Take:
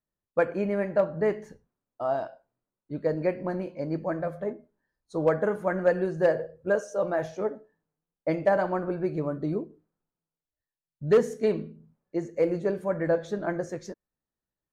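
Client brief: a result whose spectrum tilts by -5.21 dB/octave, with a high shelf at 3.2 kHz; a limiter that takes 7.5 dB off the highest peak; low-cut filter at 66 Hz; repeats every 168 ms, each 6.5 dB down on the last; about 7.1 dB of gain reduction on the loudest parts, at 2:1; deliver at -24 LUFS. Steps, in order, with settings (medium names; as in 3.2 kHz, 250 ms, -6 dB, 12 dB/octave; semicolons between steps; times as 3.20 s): high-pass 66 Hz; treble shelf 3.2 kHz -4.5 dB; compression 2:1, threshold -30 dBFS; peak limiter -25 dBFS; feedback delay 168 ms, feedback 47%, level -6.5 dB; trim +11 dB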